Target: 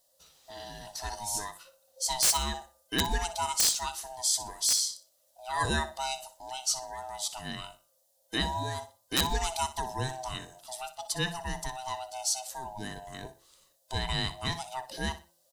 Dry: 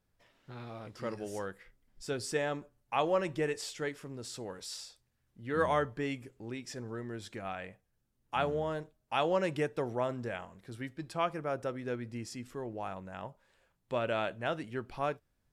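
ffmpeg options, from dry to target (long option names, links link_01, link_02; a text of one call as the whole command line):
ffmpeg -i in.wav -filter_complex "[0:a]afftfilt=real='real(if(lt(b,1008),b+24*(1-2*mod(floor(b/24),2)),b),0)':imag='imag(if(lt(b,1008),b+24*(1-2*mod(floor(b/24),2)),b),0)':win_size=2048:overlap=0.75,aexciter=amount=7.7:drive=4.3:freq=3400,aeval=exprs='(mod(5.62*val(0)+1,2)-1)/5.62':channel_layout=same,bandreject=frequency=171.1:width_type=h:width=4,bandreject=frequency=342.2:width_type=h:width=4,bandreject=frequency=513.3:width_type=h:width=4,bandreject=frequency=684.4:width_type=h:width=4,bandreject=frequency=855.5:width_type=h:width=4,bandreject=frequency=1026.6:width_type=h:width=4,bandreject=frequency=1197.7:width_type=h:width=4,bandreject=frequency=1368.8:width_type=h:width=4,bandreject=frequency=1539.9:width_type=h:width=4,asplit=2[link_01][link_02];[link_02]aecho=0:1:61|122|183:0.2|0.0519|0.0135[link_03];[link_01][link_03]amix=inputs=2:normalize=0" out.wav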